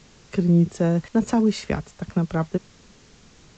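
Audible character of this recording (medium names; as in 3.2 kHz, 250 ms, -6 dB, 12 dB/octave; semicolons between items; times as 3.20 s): a quantiser's noise floor 8-bit, dither triangular; AAC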